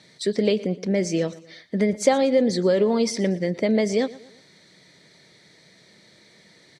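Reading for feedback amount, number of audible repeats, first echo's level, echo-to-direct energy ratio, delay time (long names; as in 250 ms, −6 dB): 43%, 3, −19.0 dB, −18.0 dB, 117 ms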